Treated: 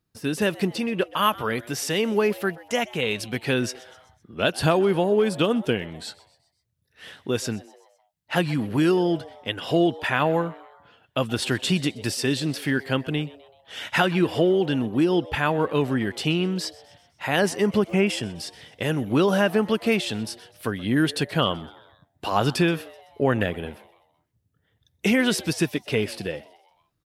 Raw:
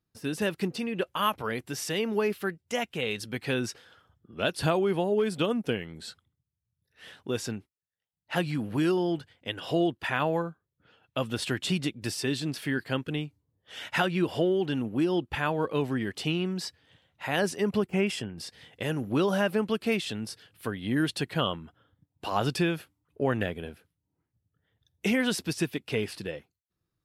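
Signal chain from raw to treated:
echo with shifted repeats 127 ms, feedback 51%, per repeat +130 Hz, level −21 dB
level +5.5 dB

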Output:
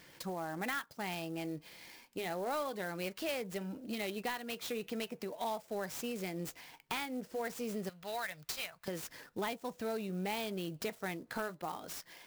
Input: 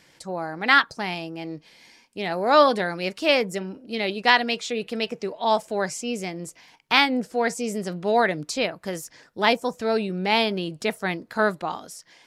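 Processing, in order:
0:07.89–0:08.88: guitar amp tone stack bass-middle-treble 10-0-10
downward compressor 5 to 1, threshold −34 dBFS, peak gain reduction 20 dB
flanger 0.22 Hz, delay 0.6 ms, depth 1.9 ms, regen −83%
soft clipping −29.5 dBFS, distortion −21 dB
converter with an unsteady clock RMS 0.026 ms
level +3 dB

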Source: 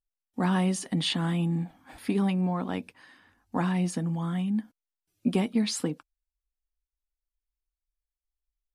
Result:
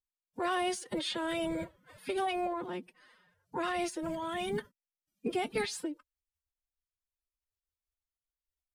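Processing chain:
phase-vocoder pitch shift with formants kept +11.5 semitones
level −6.5 dB

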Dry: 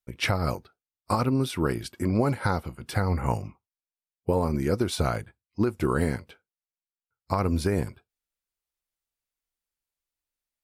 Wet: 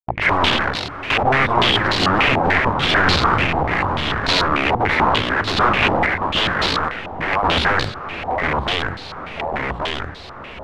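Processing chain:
noise gate −50 dBFS, range −33 dB
in parallel at +0.5 dB: brickwall limiter −24.5 dBFS, peak gain reduction 11.5 dB
0:06.06–0:07.43: on the sum: Chebyshev high-pass with heavy ripple 540 Hz, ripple 6 dB
wrap-around overflow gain 19.5 dB
on a send: feedback delay with all-pass diffusion 717 ms, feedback 47%, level −11 dB
on the sum: delay with pitch and tempo change per echo 81 ms, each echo −2 semitones, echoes 2
low-pass on a step sequencer 6.8 Hz 800–4,100 Hz
level +5 dB

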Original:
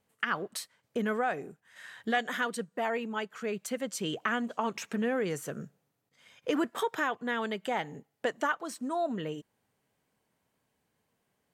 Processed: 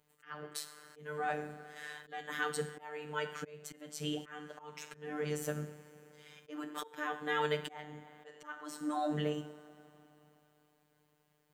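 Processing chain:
coupled-rooms reverb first 0.53 s, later 3.6 s, from −18 dB, DRR 8.5 dB
volume swells 631 ms
phases set to zero 150 Hz
level +3 dB

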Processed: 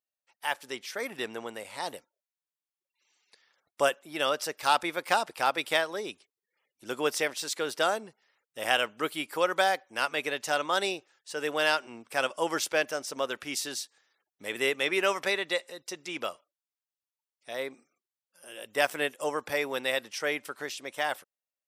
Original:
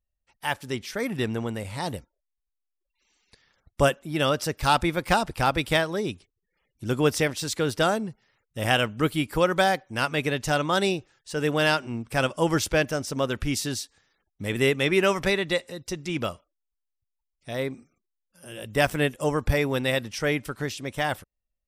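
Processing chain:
high-pass filter 470 Hz 12 dB per octave
level −2.5 dB

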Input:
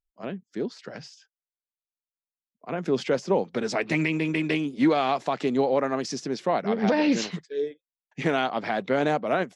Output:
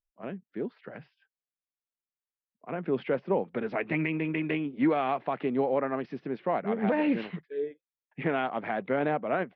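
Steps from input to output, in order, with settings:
inverse Chebyshev low-pass filter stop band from 6,600 Hz, stop band 50 dB
level −4 dB

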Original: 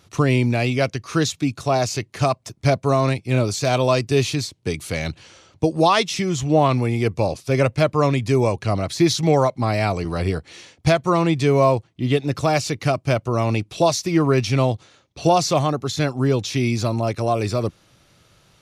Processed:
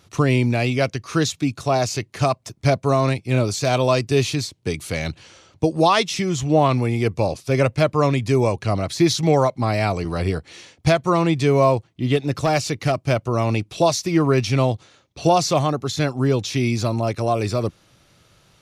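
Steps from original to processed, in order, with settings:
0:12.15–0:13.11: gain into a clipping stage and back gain 11.5 dB

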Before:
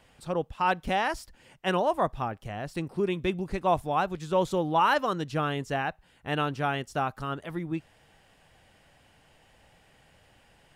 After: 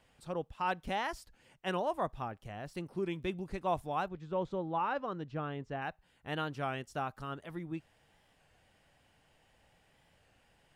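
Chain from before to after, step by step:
0:02.57–0:03.32: surface crackle 22 per second −47 dBFS
0:04.08–0:05.82: head-to-tape spacing loss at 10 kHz 26 dB
wow of a warped record 33 1/3 rpm, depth 100 cents
level −8 dB

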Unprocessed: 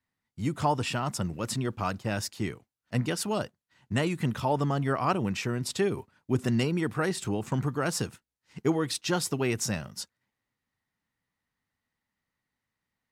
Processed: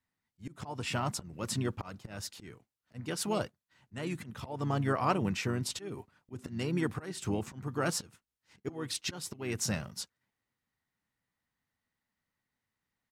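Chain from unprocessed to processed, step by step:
volume swells 299 ms
pitch-shifted copies added −4 semitones −11 dB
level −2.5 dB

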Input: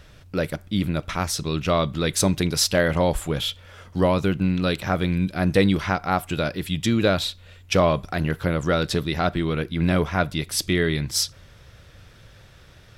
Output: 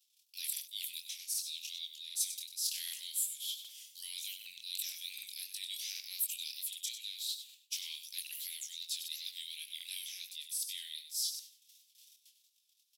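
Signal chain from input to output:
noise gate −45 dBFS, range −24 dB
inverse Chebyshev high-pass filter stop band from 1,500 Hz, stop band 40 dB
reversed playback
downward compressor 16 to 1, threshold −39 dBFS, peak gain reduction 23 dB
reversed playback
first difference
repeating echo 97 ms, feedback 22%, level −10 dB
chorus effect 2.7 Hz, delay 19.5 ms, depth 7.3 ms
high-shelf EQ 11,000 Hz +7 dB
on a send at −18.5 dB: convolution reverb RT60 0.35 s, pre-delay 76 ms
on the sum: regular buffer underruns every 0.77 s, samples 2,048, repeat, from 0:00.52
level +9 dB

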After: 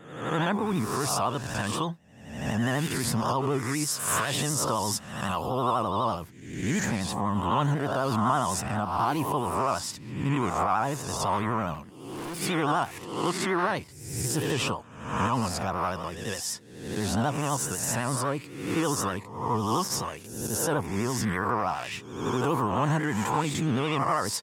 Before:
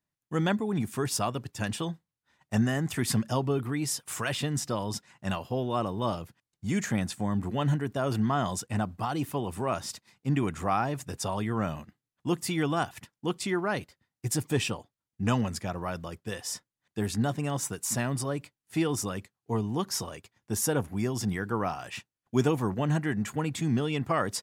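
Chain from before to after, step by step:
peak hold with a rise ahead of every peak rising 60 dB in 0.84 s
brickwall limiter −18.5 dBFS, peak gain reduction 9 dB
0:03.99–0:05.83: parametric band 11,000 Hz +8 dB 1.3 octaves
pitch vibrato 12 Hz 86 cents
dynamic equaliser 1,000 Hz, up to +8 dB, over −47 dBFS, Q 2.1
0:11.74–0:12.40: hard clipping −34 dBFS, distortion −23 dB

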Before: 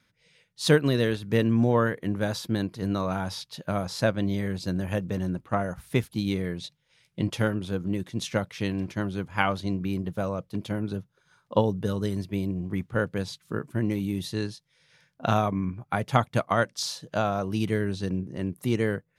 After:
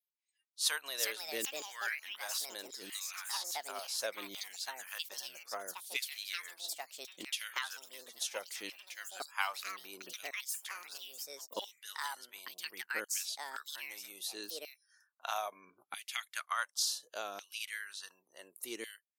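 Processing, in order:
auto-filter high-pass saw down 0.69 Hz 290–3,200 Hz
noise reduction from a noise print of the clip's start 30 dB
first-order pre-emphasis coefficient 0.97
delay with pitch and tempo change per echo 535 ms, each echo +5 semitones, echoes 2
level +1 dB

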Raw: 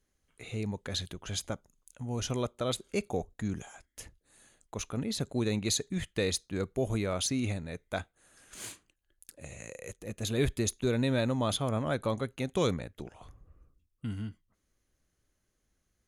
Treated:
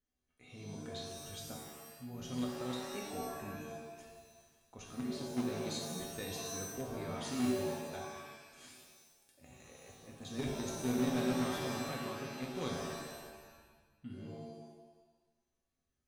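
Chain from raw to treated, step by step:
tuned comb filter 250 Hz, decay 0.45 s, harmonics odd, mix 90%
in parallel at −9.5 dB: bit reduction 6 bits
on the sum: high-frequency loss of the air 51 metres
reverb with rising layers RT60 1.1 s, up +7 semitones, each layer −2 dB, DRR 0.5 dB
level +3 dB

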